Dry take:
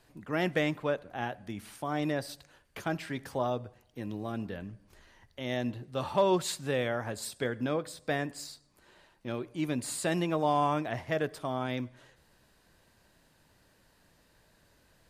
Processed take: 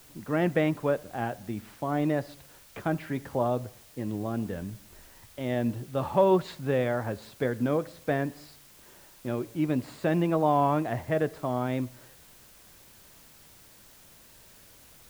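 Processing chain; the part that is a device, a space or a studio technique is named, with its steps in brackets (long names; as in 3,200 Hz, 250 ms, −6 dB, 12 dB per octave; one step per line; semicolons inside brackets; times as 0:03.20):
cassette deck with a dirty head (head-to-tape spacing loss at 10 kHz 34 dB; tape wow and flutter; white noise bed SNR 25 dB)
level +6 dB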